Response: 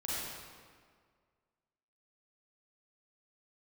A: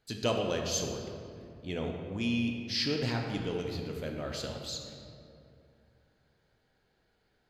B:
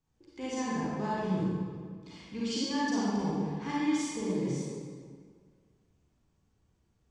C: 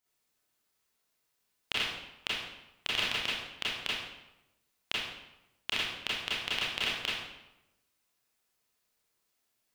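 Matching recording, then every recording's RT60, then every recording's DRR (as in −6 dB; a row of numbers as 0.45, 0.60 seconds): B; 2.6, 1.8, 0.95 seconds; 1.5, −8.0, −8.5 decibels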